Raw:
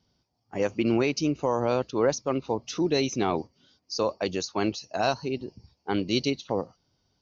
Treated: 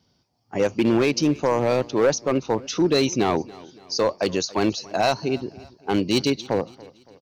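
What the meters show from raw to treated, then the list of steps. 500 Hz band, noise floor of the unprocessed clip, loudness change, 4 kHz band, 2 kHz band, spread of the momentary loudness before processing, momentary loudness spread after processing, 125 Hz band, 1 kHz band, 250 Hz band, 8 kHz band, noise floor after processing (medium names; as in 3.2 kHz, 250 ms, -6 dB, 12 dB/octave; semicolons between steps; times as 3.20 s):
+5.0 dB, -75 dBFS, +5.0 dB, +5.5 dB, +5.0 dB, 10 LU, 9 LU, +4.5 dB, +4.5 dB, +5.0 dB, no reading, -66 dBFS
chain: high-pass 71 Hz 12 dB/octave; overload inside the chain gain 19 dB; feedback delay 282 ms, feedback 46%, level -21.5 dB; trim +6 dB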